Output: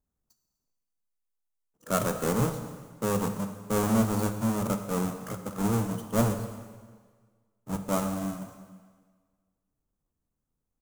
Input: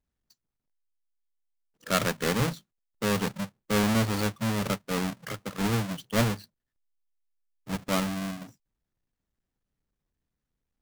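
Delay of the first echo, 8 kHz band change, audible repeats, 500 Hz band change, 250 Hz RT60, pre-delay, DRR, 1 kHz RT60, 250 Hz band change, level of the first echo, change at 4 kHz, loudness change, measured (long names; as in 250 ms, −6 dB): 248 ms, 0.0 dB, 1, +1.0 dB, 1.5 s, 7 ms, 7.0 dB, 1.6 s, +1.0 dB, −23.0 dB, −9.5 dB, −0.5 dB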